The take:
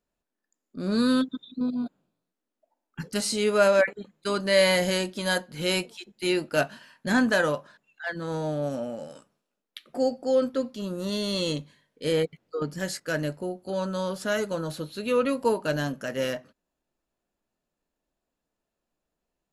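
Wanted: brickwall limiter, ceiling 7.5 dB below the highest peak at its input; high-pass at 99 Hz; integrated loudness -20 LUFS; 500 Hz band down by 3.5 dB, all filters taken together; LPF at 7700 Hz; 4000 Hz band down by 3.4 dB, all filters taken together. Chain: HPF 99 Hz; LPF 7700 Hz; bell 500 Hz -4 dB; bell 4000 Hz -4 dB; gain +10.5 dB; limiter -7.5 dBFS

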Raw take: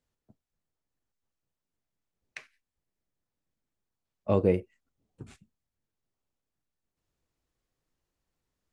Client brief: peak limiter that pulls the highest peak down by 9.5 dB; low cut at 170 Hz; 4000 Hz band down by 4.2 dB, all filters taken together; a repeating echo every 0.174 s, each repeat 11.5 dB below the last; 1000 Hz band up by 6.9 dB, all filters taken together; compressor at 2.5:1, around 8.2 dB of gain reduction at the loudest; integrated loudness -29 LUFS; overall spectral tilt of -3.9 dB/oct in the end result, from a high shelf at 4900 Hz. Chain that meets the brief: HPF 170 Hz; bell 1000 Hz +8.5 dB; bell 4000 Hz -9 dB; high shelf 4900 Hz +5 dB; compressor 2.5:1, threshold -30 dBFS; limiter -26 dBFS; feedback echo 0.174 s, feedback 27%, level -11.5 dB; gain +14.5 dB

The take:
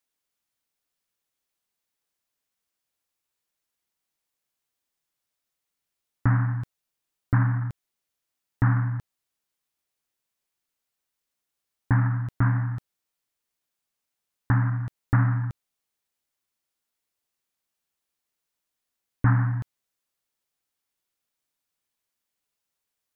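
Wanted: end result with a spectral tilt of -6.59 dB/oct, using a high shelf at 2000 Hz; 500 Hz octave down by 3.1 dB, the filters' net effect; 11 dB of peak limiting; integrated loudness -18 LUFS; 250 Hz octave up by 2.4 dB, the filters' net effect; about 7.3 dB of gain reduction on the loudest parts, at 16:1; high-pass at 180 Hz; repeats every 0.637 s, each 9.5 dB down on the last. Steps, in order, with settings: HPF 180 Hz; bell 250 Hz +7 dB; bell 500 Hz -7.5 dB; high shelf 2000 Hz -3 dB; compressor 16:1, threshold -26 dBFS; limiter -26.5 dBFS; feedback echo 0.637 s, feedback 33%, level -9.5 dB; gain +21 dB

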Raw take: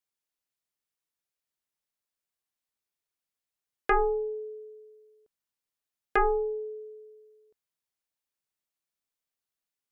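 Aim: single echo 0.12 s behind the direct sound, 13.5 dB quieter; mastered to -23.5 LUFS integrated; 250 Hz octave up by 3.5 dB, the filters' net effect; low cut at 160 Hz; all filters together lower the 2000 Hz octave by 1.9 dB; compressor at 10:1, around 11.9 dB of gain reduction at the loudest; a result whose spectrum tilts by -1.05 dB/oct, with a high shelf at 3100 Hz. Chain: HPF 160 Hz; bell 250 Hz +8.5 dB; bell 2000 Hz -3.5 dB; high shelf 3100 Hz +3.5 dB; compressor 10:1, threshold -31 dBFS; echo 0.12 s -13.5 dB; gain +14.5 dB

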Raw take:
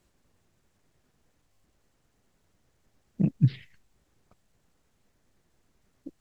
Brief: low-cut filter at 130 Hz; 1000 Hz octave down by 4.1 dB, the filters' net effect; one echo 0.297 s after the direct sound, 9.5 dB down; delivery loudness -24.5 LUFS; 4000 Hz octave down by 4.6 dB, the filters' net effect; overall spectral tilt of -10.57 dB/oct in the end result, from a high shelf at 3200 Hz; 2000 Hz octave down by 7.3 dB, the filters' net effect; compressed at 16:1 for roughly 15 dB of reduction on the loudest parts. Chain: HPF 130 Hz; bell 1000 Hz -5 dB; bell 2000 Hz -7.5 dB; high shelf 3200 Hz +4.5 dB; bell 4000 Hz -6 dB; compressor 16:1, threshold -33 dBFS; echo 0.297 s -9.5 dB; gain +19 dB

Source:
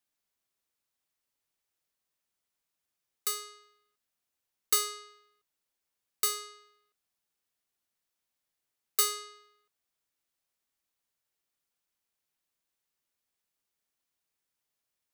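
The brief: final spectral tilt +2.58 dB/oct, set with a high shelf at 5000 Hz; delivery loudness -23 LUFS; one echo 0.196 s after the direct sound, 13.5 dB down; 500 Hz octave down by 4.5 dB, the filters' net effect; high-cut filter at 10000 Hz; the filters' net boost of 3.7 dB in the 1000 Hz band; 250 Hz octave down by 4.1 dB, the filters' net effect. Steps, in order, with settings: LPF 10000 Hz; bell 250 Hz -3 dB; bell 500 Hz -5.5 dB; bell 1000 Hz +5.5 dB; high shelf 5000 Hz +7 dB; echo 0.196 s -13.5 dB; gain +6.5 dB

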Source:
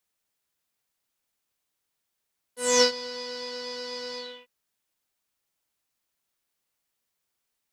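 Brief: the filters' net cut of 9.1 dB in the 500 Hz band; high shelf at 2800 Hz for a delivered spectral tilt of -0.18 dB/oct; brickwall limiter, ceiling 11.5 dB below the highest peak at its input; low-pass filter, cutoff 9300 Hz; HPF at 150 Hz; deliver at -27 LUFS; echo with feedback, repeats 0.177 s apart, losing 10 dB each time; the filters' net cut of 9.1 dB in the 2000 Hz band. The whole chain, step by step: HPF 150 Hz; LPF 9300 Hz; bell 500 Hz -8.5 dB; bell 2000 Hz -8 dB; high shelf 2800 Hz -8.5 dB; limiter -26.5 dBFS; feedback echo 0.177 s, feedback 32%, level -10 dB; gain +13.5 dB

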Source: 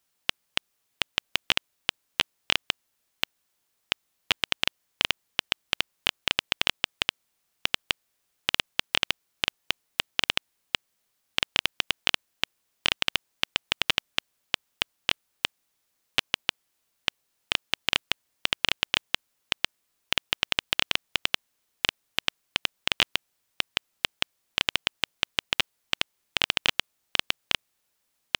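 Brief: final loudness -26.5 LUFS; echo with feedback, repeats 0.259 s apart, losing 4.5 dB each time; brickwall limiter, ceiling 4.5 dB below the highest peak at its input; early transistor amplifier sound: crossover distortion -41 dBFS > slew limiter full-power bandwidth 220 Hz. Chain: limiter -6 dBFS; feedback echo 0.259 s, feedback 60%, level -4.5 dB; crossover distortion -41 dBFS; slew limiter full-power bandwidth 220 Hz; gain +12 dB

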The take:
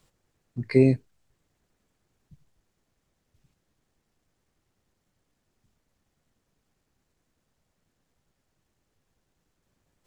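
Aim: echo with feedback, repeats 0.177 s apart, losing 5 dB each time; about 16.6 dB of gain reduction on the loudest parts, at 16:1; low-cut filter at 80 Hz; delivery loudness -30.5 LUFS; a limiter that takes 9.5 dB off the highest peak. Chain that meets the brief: HPF 80 Hz; compressor 16:1, threshold -29 dBFS; limiter -28.5 dBFS; feedback echo 0.177 s, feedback 56%, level -5 dB; gain +12.5 dB

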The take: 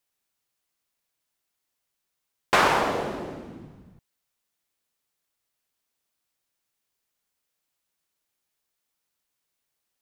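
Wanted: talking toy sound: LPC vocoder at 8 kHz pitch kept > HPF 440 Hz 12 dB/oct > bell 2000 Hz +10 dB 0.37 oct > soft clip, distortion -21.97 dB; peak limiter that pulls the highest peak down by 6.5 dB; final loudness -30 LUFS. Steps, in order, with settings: limiter -13.5 dBFS; LPC vocoder at 8 kHz pitch kept; HPF 440 Hz 12 dB/oct; bell 2000 Hz +10 dB 0.37 oct; soft clip -13.5 dBFS; gain -3.5 dB

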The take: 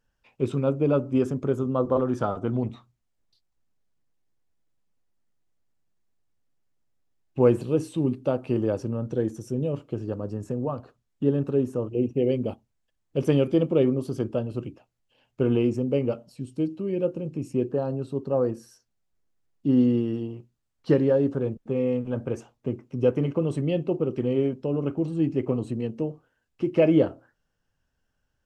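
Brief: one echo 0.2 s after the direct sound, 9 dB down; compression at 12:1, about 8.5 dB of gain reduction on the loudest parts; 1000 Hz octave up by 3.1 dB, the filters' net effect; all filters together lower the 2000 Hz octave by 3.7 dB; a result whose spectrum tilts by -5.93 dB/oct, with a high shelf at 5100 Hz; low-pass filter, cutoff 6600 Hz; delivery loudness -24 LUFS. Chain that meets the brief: LPF 6600 Hz; bell 1000 Hz +6 dB; bell 2000 Hz -9 dB; high shelf 5100 Hz +8.5 dB; compressor 12:1, threshold -22 dBFS; echo 0.2 s -9 dB; gain +5 dB

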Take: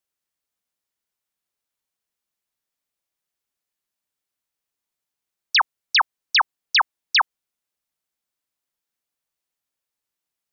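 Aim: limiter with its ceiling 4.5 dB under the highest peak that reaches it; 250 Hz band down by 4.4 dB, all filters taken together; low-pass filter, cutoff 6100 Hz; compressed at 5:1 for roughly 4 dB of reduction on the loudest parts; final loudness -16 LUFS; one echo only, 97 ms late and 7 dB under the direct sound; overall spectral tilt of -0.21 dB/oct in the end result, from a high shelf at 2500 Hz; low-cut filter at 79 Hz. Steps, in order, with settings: HPF 79 Hz; LPF 6100 Hz; bell 250 Hz -6.5 dB; high shelf 2500 Hz +7.5 dB; compressor 5:1, threshold -14 dBFS; limiter -12 dBFS; echo 97 ms -7 dB; gain +5.5 dB

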